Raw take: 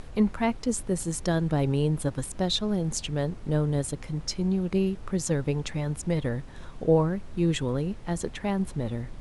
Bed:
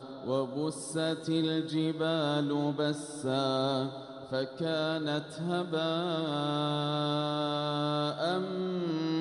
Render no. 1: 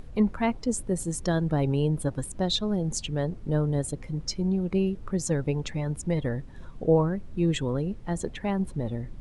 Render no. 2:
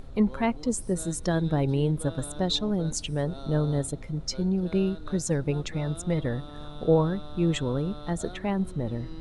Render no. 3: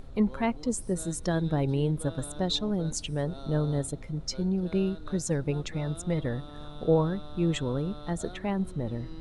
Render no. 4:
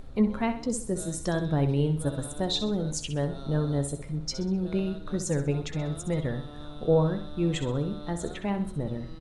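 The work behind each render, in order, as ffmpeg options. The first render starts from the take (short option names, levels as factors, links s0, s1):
-af "afftdn=nr=9:nf=-43"
-filter_complex "[1:a]volume=0.211[s0];[0:a][s0]amix=inputs=2:normalize=0"
-af "volume=0.794"
-filter_complex "[0:a]asplit=2[s0][s1];[s1]adelay=14,volume=0.251[s2];[s0][s2]amix=inputs=2:normalize=0,aecho=1:1:64|128|192|256:0.316|0.123|0.0481|0.0188"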